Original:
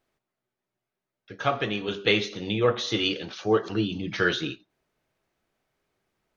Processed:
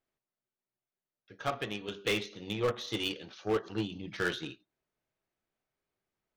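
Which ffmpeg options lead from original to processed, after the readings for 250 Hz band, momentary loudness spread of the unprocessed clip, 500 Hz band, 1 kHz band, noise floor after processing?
-9.0 dB, 7 LU, -8.5 dB, -8.5 dB, under -85 dBFS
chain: -af "aeval=exprs='0.501*(cos(1*acos(clip(val(0)/0.501,-1,1)))-cos(1*PI/2))+0.0562*(cos(3*acos(clip(val(0)/0.501,-1,1)))-cos(3*PI/2))+0.00316*(cos(6*acos(clip(val(0)/0.501,-1,1)))-cos(6*PI/2))+0.0282*(cos(7*acos(clip(val(0)/0.501,-1,1)))-cos(7*PI/2))':c=same,volume=22.5dB,asoftclip=hard,volume=-22.5dB"

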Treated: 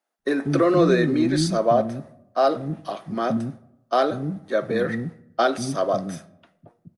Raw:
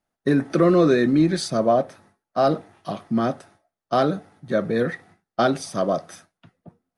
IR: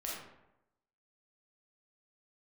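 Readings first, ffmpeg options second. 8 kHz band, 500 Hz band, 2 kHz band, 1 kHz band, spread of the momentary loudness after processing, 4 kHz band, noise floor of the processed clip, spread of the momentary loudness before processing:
+0.5 dB, 0.0 dB, +0.5 dB, +0.5 dB, 13 LU, +0.5 dB, -68 dBFS, 16 LU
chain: -filter_complex "[0:a]acrossover=split=280[a][b];[a]adelay=190[c];[c][b]amix=inputs=2:normalize=0,asplit=2[d][e];[1:a]atrim=start_sample=2205[f];[e][f]afir=irnorm=-1:irlink=0,volume=-17.5dB[g];[d][g]amix=inputs=2:normalize=0"

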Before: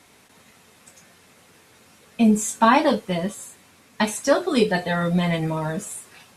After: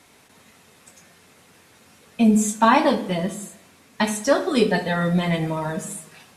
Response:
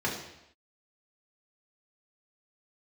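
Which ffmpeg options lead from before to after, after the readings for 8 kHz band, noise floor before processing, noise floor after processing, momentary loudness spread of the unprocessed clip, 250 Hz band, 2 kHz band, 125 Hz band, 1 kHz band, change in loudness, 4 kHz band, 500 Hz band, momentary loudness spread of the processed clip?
0.0 dB, -54 dBFS, -54 dBFS, 14 LU, +1.0 dB, +0.5 dB, +0.5 dB, +0.5 dB, +0.5 dB, 0.0 dB, +0.5 dB, 14 LU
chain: -filter_complex "[0:a]asplit=2[a][b];[1:a]atrim=start_sample=2205,adelay=60[c];[b][c]afir=irnorm=-1:irlink=0,volume=-21dB[d];[a][d]amix=inputs=2:normalize=0"

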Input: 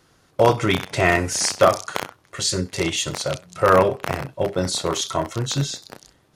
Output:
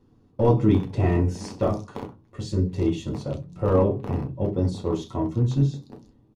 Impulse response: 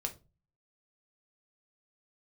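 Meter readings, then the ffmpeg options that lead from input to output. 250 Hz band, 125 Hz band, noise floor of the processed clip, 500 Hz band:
+2.5 dB, +4.0 dB, -59 dBFS, -5.0 dB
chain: -filter_complex "[0:a]acontrast=29,firequalizer=gain_entry='entry(170,0);entry(270,3);entry(460,-3);entry(650,-13);entry(960,-10);entry(1600,-22);entry(2700,-18);entry(8400,-25)':delay=0.05:min_phase=1[a];[1:a]atrim=start_sample=2205,asetrate=70560,aresample=44100[b];[a][b]afir=irnorm=-1:irlink=0"

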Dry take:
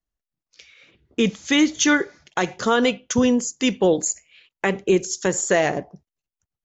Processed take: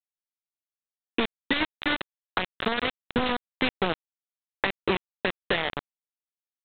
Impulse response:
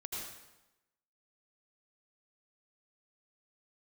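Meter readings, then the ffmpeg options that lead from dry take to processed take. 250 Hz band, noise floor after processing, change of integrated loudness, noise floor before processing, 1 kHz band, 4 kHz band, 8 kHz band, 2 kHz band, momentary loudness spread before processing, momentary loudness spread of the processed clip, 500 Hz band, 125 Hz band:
-11.5 dB, under -85 dBFS, -8.0 dB, under -85 dBFS, -4.5 dB, -3.5 dB, n/a, -4.0 dB, 7 LU, 5 LU, -10.5 dB, -8.0 dB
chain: -af "equalizer=f=1.9k:t=o:w=0.22:g=8,acompressor=threshold=-33dB:ratio=6,aresample=8000,acrusher=bits=4:mix=0:aa=0.000001,aresample=44100,volume=7dB"

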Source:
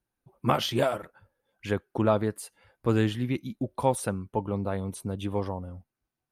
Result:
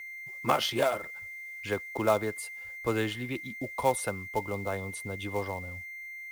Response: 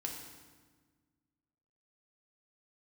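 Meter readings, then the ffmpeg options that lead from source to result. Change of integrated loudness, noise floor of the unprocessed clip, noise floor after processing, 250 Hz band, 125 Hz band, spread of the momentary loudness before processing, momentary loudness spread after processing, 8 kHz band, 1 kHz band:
-3.0 dB, under -85 dBFS, -43 dBFS, -7.0 dB, -8.0 dB, 12 LU, 12 LU, +0.5 dB, -0.5 dB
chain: -filter_complex "[0:a]lowshelf=f=250:g=-2.5,acrossover=split=320|3000[a][b][c];[a]acompressor=threshold=-51dB:ratio=1.5[d];[d][b][c]amix=inputs=3:normalize=0,asubboost=boost=2.5:cutoff=100,aeval=exprs='val(0)+0.01*sin(2*PI*2100*n/s)':c=same,acrossover=split=350|5700[e][f][g];[f]acrusher=bits=4:mode=log:mix=0:aa=0.000001[h];[e][h][g]amix=inputs=3:normalize=0"

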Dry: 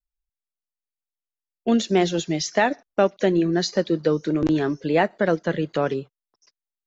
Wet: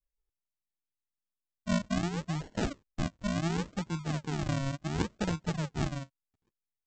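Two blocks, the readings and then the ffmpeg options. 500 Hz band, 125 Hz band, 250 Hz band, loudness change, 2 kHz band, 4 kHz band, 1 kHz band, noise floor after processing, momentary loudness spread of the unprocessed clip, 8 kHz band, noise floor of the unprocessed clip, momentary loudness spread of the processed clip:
-18.5 dB, -3.0 dB, -11.0 dB, -11.5 dB, -12.0 dB, -11.0 dB, -13.0 dB, under -85 dBFS, 5 LU, n/a, under -85 dBFS, 5 LU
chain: -af "firequalizer=gain_entry='entry(130,0);entry(430,-28);entry(1100,1);entry(2300,-20)':delay=0.05:min_phase=1,aresample=16000,acrusher=samples=26:mix=1:aa=0.000001:lfo=1:lforange=26:lforate=0.7,aresample=44100"

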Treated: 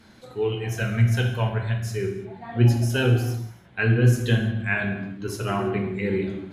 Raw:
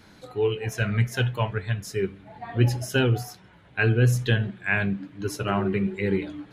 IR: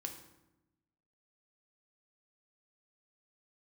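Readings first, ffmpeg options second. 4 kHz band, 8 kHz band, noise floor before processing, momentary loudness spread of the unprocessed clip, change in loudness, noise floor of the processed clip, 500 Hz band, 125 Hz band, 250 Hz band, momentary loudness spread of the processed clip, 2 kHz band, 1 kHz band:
0.0 dB, 0.0 dB, -53 dBFS, 11 LU, +1.5 dB, -50 dBFS, 0.0 dB, +3.0 dB, +1.5 dB, 12 LU, 0.0 dB, 0.0 dB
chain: -filter_complex "[1:a]atrim=start_sample=2205,afade=t=out:st=0.29:d=0.01,atrim=end_sample=13230,asetrate=30429,aresample=44100[a];[0:a][a]afir=irnorm=-1:irlink=0"

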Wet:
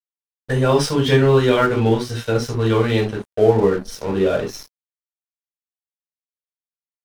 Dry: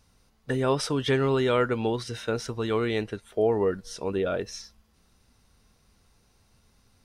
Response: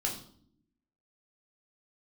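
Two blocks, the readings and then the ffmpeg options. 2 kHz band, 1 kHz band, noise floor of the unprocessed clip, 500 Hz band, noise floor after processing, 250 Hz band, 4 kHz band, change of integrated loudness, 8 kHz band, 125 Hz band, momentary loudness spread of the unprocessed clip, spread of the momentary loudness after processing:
+7.5 dB, +8.0 dB, -65 dBFS, +8.5 dB, under -85 dBFS, +9.0 dB, +7.5 dB, +9.0 dB, +6.5 dB, +12.0 dB, 9 LU, 10 LU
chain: -filter_complex "[1:a]atrim=start_sample=2205,afade=t=out:st=0.14:d=0.01,atrim=end_sample=6615,asetrate=48510,aresample=44100[a];[0:a][a]afir=irnorm=-1:irlink=0,aeval=exprs='sgn(val(0))*max(abs(val(0))-0.0112,0)':c=same,volume=5.5dB"

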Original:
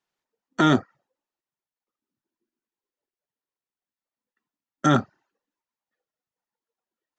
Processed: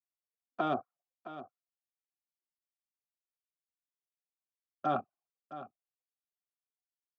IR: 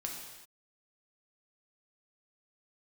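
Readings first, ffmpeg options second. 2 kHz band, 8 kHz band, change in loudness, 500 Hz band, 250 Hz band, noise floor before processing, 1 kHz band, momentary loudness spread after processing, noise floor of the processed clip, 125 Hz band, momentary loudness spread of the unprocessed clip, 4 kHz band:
-17.5 dB, under -35 dB, -15.0 dB, -9.0 dB, -18.0 dB, under -85 dBFS, -7.5 dB, 19 LU, under -85 dBFS, -21.0 dB, 5 LU, -19.0 dB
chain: -filter_complex "[0:a]afwtdn=0.0178,asplit=3[a][b][c];[a]bandpass=f=730:t=q:w=8,volume=0dB[d];[b]bandpass=f=1.09k:t=q:w=8,volume=-6dB[e];[c]bandpass=f=2.44k:t=q:w=8,volume=-9dB[f];[d][e][f]amix=inputs=3:normalize=0,lowshelf=f=220:g=10.5,aecho=1:1:665:0.211"

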